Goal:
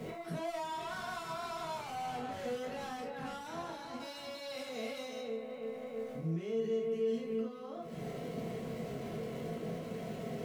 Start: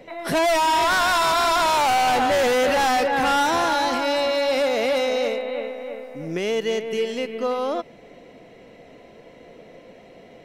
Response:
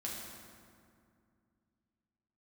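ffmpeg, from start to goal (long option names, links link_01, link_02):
-filter_complex "[0:a]aeval=exprs='val(0)+0.5*0.00891*sgn(val(0))':channel_layout=same,acompressor=threshold=-33dB:ratio=6,alimiter=level_in=10.5dB:limit=-24dB:level=0:latency=1:release=73,volume=-10.5dB,equalizer=frequency=160:width=1:gain=13.5,aeval=exprs='val(0)+0.000562*sin(2*PI*1100*n/s)':channel_layout=same,asettb=1/sr,asplit=3[link_01][link_02][link_03];[link_01]atrim=end=4.004[link_04];[link_02]atrim=start=4:end=5.21,asetpts=PTS-STARTPTS,afade=type=in:duration=0.004:curve=qsin,afade=type=out:start_time=1.206:duration=0.004:curve=qsin,highshelf=frequency=2700:gain=10.5[link_05];[link_03]atrim=start=5.206[link_06];[link_04][link_05]acrossfade=duration=0.004:curve1=hsin:curve2=qsin[link_07];[link_07][link_06]acrossfade=duration=0.004:curve1=qsin:curve2=hsin[link_08];[1:a]atrim=start_sample=2205,afade=type=out:start_time=0.2:duration=0.01,atrim=end_sample=9261,asetrate=88200,aresample=44100[link_09];[link_08][link_09]afir=irnorm=-1:irlink=0,volume=1dB"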